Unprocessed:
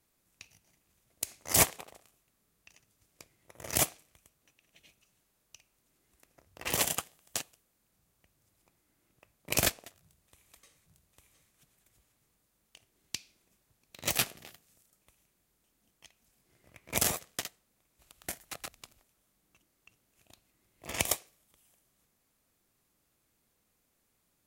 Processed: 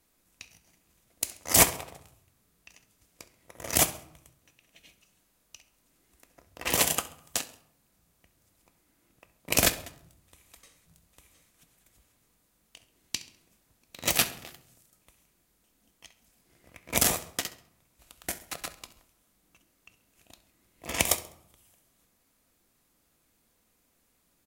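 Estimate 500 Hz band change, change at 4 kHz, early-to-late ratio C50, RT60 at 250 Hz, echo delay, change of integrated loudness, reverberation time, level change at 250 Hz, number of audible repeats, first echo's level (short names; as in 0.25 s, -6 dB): +5.0 dB, +5.0 dB, 14.5 dB, 0.90 s, 67 ms, +4.5 dB, 0.70 s, +5.5 dB, 3, -18.5 dB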